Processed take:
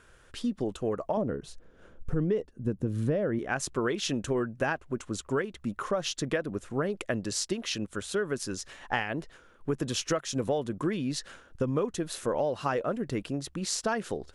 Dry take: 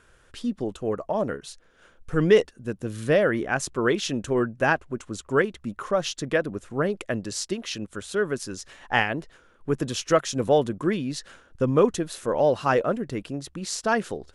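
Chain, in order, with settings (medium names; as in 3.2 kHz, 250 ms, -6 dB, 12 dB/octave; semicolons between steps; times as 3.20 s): 1.17–3.39 s: tilt shelf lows +8.5 dB, about 800 Hz; compression 8:1, threshold -25 dBFS, peak gain reduction 17 dB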